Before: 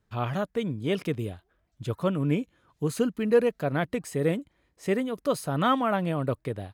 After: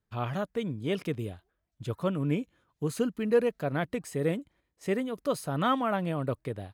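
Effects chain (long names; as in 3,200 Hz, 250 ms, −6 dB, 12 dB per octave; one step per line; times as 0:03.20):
noise gate −55 dBFS, range −7 dB
level −3 dB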